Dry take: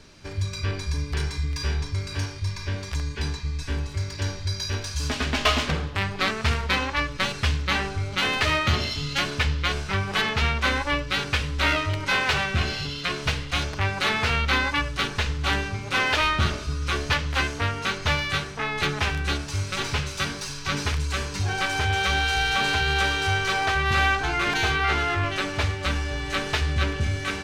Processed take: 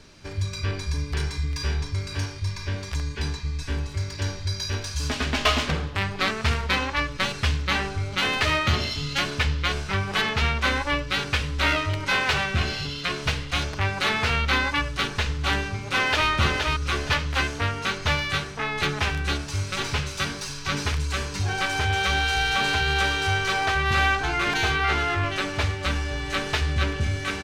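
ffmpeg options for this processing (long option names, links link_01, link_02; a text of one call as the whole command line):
ffmpeg -i in.wav -filter_complex "[0:a]asplit=2[link_01][link_02];[link_02]afade=type=in:start_time=15.71:duration=0.01,afade=type=out:start_time=16.29:duration=0.01,aecho=0:1:470|940|1410:0.630957|0.157739|0.0394348[link_03];[link_01][link_03]amix=inputs=2:normalize=0" out.wav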